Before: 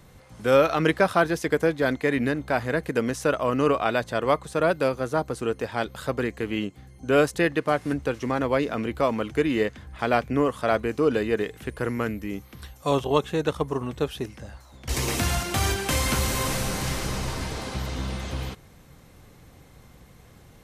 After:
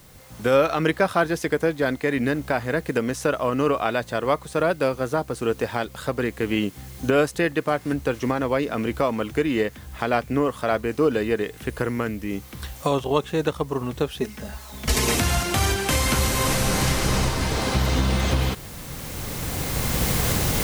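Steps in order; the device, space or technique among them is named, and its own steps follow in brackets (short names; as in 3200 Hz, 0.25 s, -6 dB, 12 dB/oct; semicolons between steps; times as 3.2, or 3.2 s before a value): cheap recorder with automatic gain (white noise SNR 29 dB; recorder AGC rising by 11 dB/s); 14.2–15.15 comb 4.7 ms, depth 70%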